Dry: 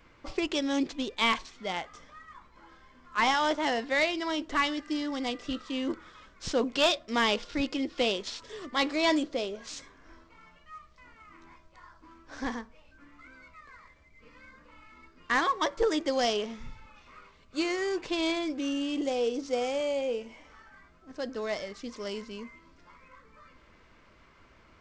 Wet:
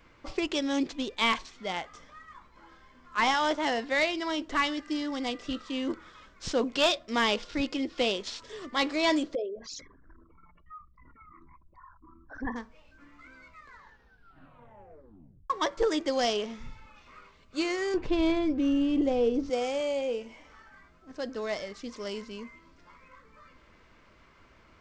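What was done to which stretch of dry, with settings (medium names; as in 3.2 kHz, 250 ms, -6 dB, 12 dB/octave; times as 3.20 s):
9.35–12.56 s: resonances exaggerated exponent 3
13.65 s: tape stop 1.85 s
17.94–19.50 s: RIAA curve playback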